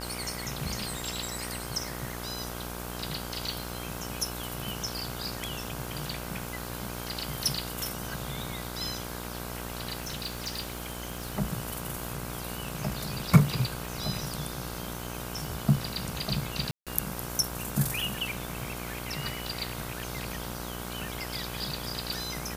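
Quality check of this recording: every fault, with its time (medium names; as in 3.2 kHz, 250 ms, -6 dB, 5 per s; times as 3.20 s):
buzz 60 Hz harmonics 27 -39 dBFS
crackle 19 per s -39 dBFS
3.63 s: pop
10.02–11.39 s: clipped -29.5 dBFS
16.71–16.87 s: dropout 157 ms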